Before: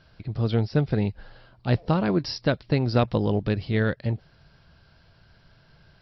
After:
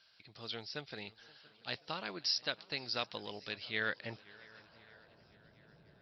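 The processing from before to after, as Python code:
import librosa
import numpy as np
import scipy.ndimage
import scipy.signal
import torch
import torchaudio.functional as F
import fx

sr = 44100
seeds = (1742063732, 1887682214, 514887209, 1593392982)

y = fx.filter_sweep_bandpass(x, sr, from_hz=4800.0, to_hz=350.0, start_s=3.47, end_s=5.4, q=0.93)
y = fx.echo_swing(y, sr, ms=1140, ratio=1.5, feedback_pct=33, wet_db=-24.0)
y = fx.echo_warbled(y, sr, ms=528, feedback_pct=53, rate_hz=2.8, cents=118, wet_db=-23)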